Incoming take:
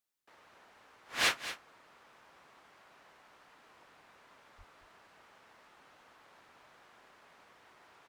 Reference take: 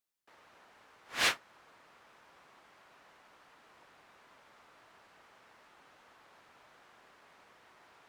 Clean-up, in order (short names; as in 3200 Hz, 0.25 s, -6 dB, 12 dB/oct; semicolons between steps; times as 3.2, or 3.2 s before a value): 4.57–4.69 HPF 140 Hz 24 dB/oct; inverse comb 0.225 s -12.5 dB